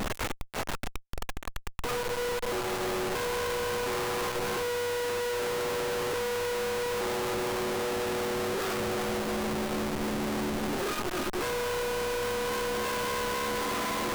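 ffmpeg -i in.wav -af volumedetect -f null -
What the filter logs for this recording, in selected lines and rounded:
mean_volume: -30.9 dB
max_volume: -24.3 dB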